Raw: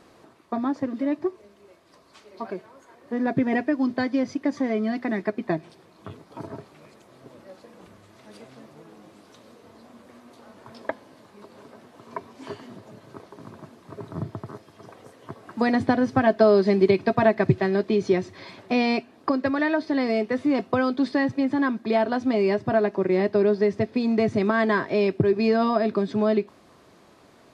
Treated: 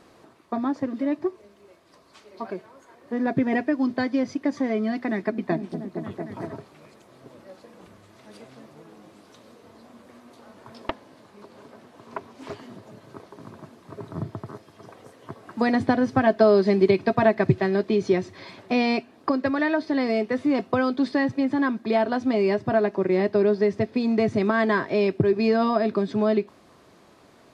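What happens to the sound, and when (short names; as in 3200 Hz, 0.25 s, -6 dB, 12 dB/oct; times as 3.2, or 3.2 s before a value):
5–6.53 repeats that get brighter 0.23 s, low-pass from 200 Hz, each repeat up 1 oct, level -3 dB
10.89–12.58 Doppler distortion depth 0.55 ms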